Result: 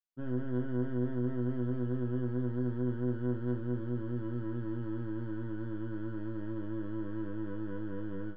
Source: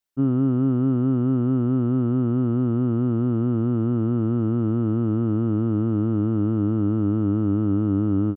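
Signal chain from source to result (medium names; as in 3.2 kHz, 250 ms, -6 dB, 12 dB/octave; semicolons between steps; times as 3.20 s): tracing distortion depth 0.25 ms; distance through air 86 m; chord resonator B2 sus4, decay 0.28 s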